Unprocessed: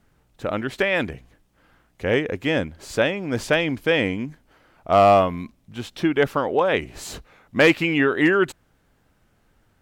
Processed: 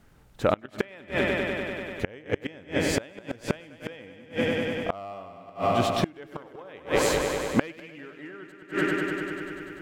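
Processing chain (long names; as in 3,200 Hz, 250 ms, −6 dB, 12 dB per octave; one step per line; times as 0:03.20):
echo machine with several playback heads 98 ms, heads first and second, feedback 73%, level −11.5 dB
gate with flip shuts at −14 dBFS, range −29 dB
level +4 dB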